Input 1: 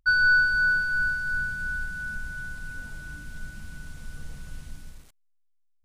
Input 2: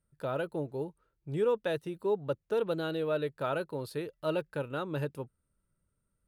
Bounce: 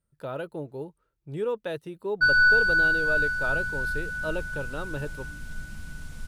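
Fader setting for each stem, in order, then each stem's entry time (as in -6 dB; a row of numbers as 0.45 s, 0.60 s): +1.0 dB, -0.5 dB; 2.15 s, 0.00 s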